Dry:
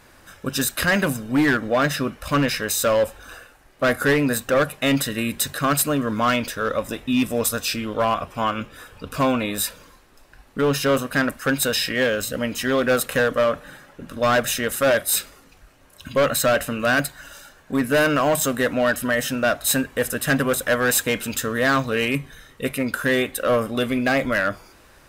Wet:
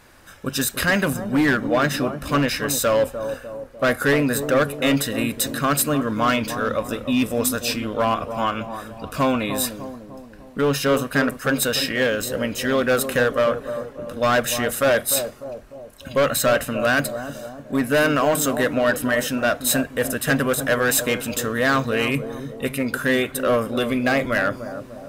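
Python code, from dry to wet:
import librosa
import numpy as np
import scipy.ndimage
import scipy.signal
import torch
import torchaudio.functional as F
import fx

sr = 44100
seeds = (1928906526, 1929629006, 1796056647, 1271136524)

y = fx.echo_bbd(x, sr, ms=299, stages=2048, feedback_pct=52, wet_db=-9)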